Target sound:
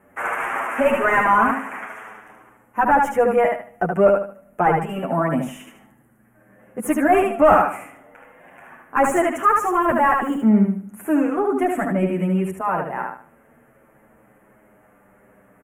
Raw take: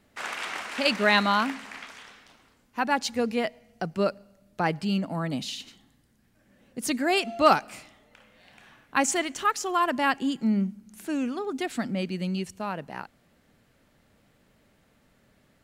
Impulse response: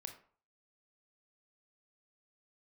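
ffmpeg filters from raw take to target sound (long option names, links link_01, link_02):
-filter_complex "[0:a]equalizer=frequency=12000:width=1.2:gain=13,asplit=2[link_01][link_02];[link_02]aecho=0:1:75|150|225|300:0.562|0.152|0.041|0.0111[link_03];[link_01][link_03]amix=inputs=2:normalize=0,asettb=1/sr,asplit=3[link_04][link_05][link_06];[link_04]atrim=end=9.334[link_07];[link_05]atrim=start=9.33:end=10.44,asetpts=PTS-STARTPTS,afade=type=in:duration=0.004:curve=qsin,afade=type=out:start_time=1.106:duration=0.004:curve=qsin,acrusher=bits=5:mode=log:mix=0:aa=0.000001[link_08];[link_06]atrim=start=10.436[link_09];[link_07][link_08]acrossfade=duration=0.004:curve1=hsin:curve2=qsin[link_10];[link_10][link_09]acrossfade=duration=0.004:curve1=qsin:curve2=hsin,asplit=2[link_11][link_12];[link_12]highpass=frequency=720:poles=1,volume=18dB,asoftclip=type=tanh:threshold=-6.5dB[link_13];[link_11][link_13]amix=inputs=2:normalize=0,lowpass=frequency=1000:poles=1,volume=-6dB,asuperstop=centerf=4300:order=4:qfactor=0.66,asplit=2[link_14][link_15];[link_15]adelay=8.1,afreqshift=-0.25[link_16];[link_14][link_16]amix=inputs=2:normalize=1,volume=7dB"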